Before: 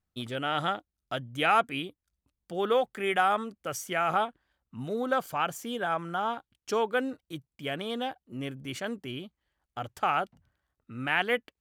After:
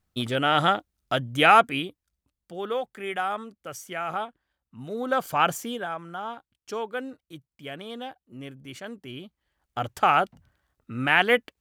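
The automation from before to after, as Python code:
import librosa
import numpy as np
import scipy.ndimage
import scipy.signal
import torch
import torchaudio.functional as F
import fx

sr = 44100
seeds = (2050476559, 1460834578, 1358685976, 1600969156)

y = fx.gain(x, sr, db=fx.line((1.5, 8.0), (2.59, -3.5), (4.78, -3.5), (5.49, 8.5), (5.94, -4.0), (8.93, -4.0), (9.81, 7.0)))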